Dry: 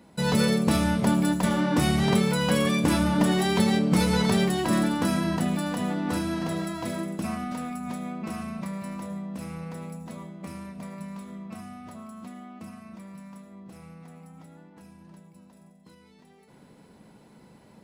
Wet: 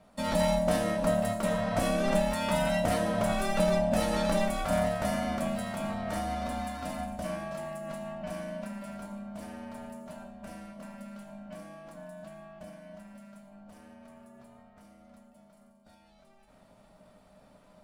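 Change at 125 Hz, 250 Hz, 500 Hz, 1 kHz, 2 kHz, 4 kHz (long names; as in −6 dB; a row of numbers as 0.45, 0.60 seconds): −8.5, −8.5, +1.0, −1.5, −5.0, −7.5 decibels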